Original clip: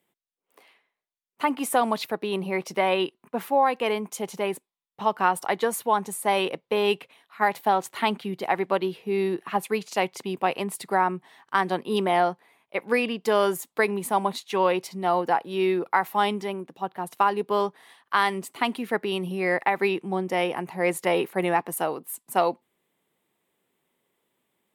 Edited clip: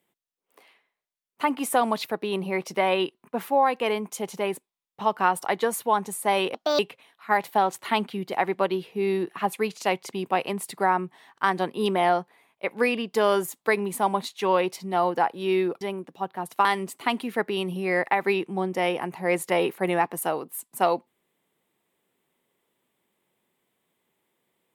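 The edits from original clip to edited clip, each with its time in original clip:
0:06.54–0:06.90: play speed 144%
0:15.92–0:16.42: remove
0:17.26–0:18.20: remove

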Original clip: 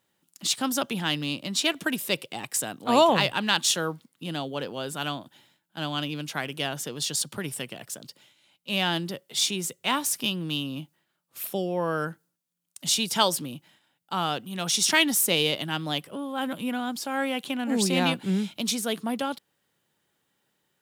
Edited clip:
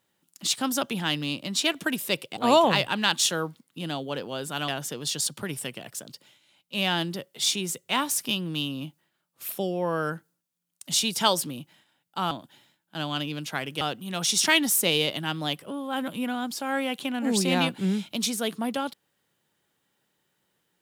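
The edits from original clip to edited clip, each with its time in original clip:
0:02.37–0:02.82: remove
0:05.13–0:06.63: move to 0:14.26

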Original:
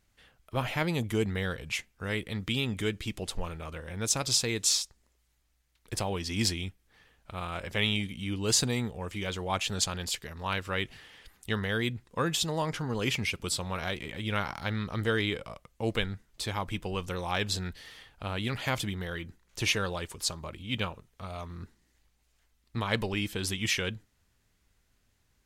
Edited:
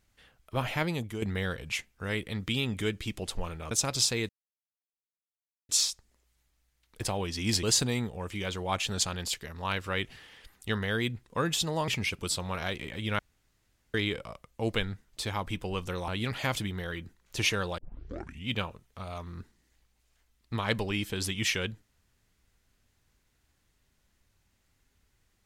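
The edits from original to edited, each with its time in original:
0:00.80–0:01.22: fade out, to −10 dB
0:03.71–0:04.03: remove
0:04.61: splice in silence 1.40 s
0:06.55–0:08.44: remove
0:12.69–0:13.09: remove
0:14.40–0:15.15: fill with room tone
0:17.29–0:18.31: remove
0:20.01: tape start 0.70 s

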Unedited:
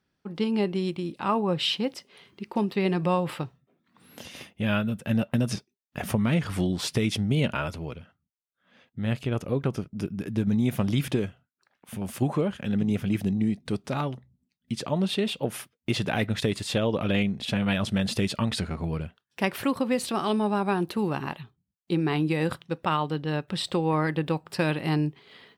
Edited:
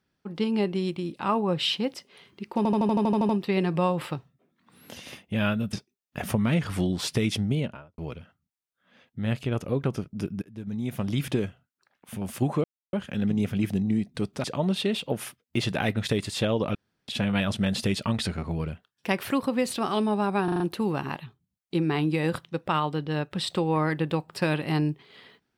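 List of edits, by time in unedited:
0:02.57: stutter 0.08 s, 10 plays
0:05.01–0:05.53: remove
0:07.17–0:07.78: fade out and dull
0:10.22–0:11.19: fade in, from −22 dB
0:12.44: splice in silence 0.29 s
0:13.95–0:14.77: remove
0:17.08–0:17.41: fill with room tone
0:20.77: stutter 0.04 s, 5 plays

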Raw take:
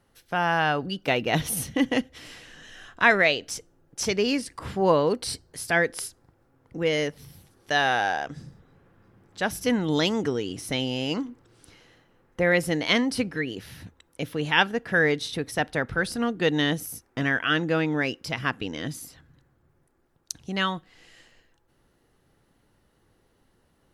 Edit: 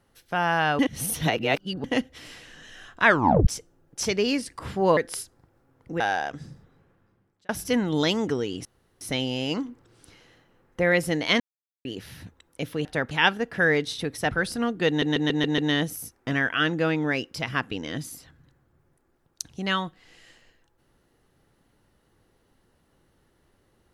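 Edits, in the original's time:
0:00.79–0:01.84: reverse
0:03.06: tape stop 0.41 s
0:04.97–0:05.82: remove
0:06.85–0:07.96: remove
0:08.46–0:09.45: fade out
0:10.61: splice in room tone 0.36 s
0:13.00–0:13.45: silence
0:15.65–0:15.91: move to 0:14.45
0:16.48: stutter 0.14 s, 6 plays

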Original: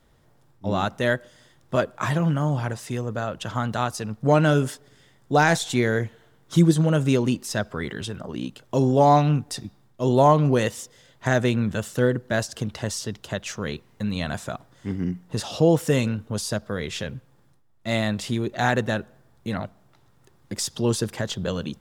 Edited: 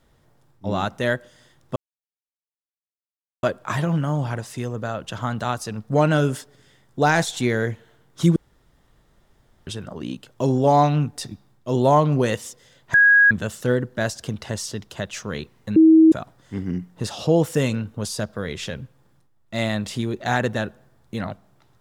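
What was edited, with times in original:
0:01.76: splice in silence 1.67 s
0:06.69–0:08.00: fill with room tone
0:11.27–0:11.64: beep over 1,650 Hz −10 dBFS
0:14.09–0:14.45: beep over 320 Hz −8 dBFS

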